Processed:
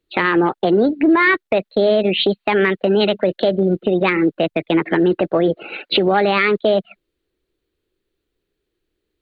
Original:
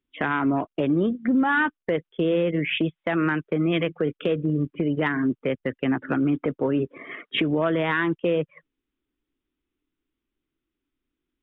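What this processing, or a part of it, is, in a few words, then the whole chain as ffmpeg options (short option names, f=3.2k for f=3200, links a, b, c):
nightcore: -af "asetrate=54684,aresample=44100,volume=7.5dB"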